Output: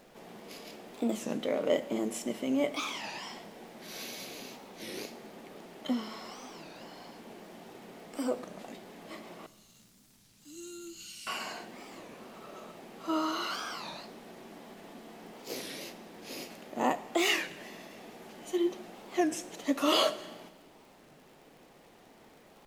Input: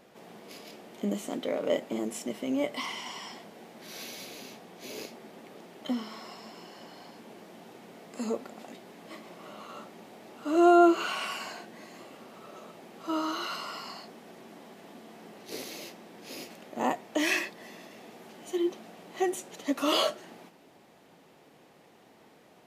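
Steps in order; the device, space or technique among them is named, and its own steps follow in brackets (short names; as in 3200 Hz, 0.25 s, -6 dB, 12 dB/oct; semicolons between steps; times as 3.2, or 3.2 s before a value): 9.46–11.27 Chebyshev band-stop 100–6000 Hz, order 2; warped LP (record warp 33 1/3 rpm, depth 250 cents; crackle 73/s -50 dBFS; pink noise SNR 34 dB); Schroeder reverb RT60 1.2 s, combs from 30 ms, DRR 15.5 dB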